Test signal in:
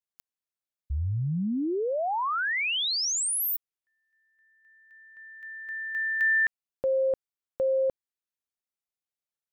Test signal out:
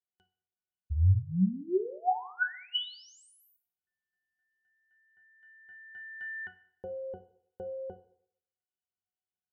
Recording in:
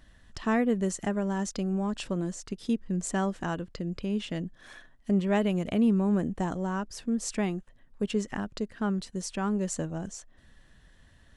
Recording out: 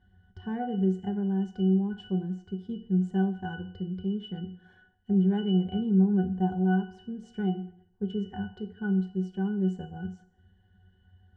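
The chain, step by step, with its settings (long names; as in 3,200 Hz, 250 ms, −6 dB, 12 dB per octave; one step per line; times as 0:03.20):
resonances in every octave F#, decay 0.19 s
feedback delay network reverb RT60 0.68 s, low-frequency decay 0.85×, high-frequency decay 0.9×, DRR 9 dB
level +9 dB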